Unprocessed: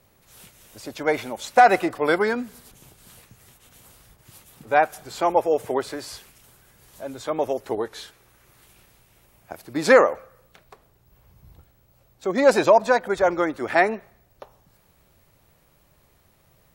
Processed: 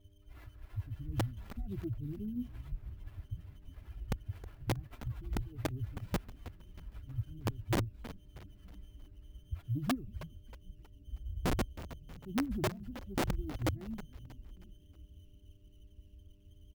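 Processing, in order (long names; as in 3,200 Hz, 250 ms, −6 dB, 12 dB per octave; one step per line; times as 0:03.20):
spectral dynamics exaggerated over time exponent 2
inverse Chebyshev band-stop filter 510–5,900 Hz, stop band 70 dB
high-shelf EQ 10,000 Hz +7 dB
in parallel at 0 dB: brickwall limiter −50.5 dBFS, peak gain reduction 11.5 dB
on the sum: high-pass filter 42 Hz 12 dB per octave
spectral tilt −3 dB per octave
hum with harmonics 100 Hz, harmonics 6, −79 dBFS −6 dB per octave
comb filter 3 ms, depth 88%
wrap-around overflow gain 35.5 dB
on a send: echo with shifted repeats 317 ms, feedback 45%, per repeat −100 Hz, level −14 dB
on the sum: windowed peak hold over 5 samples
level +10 dB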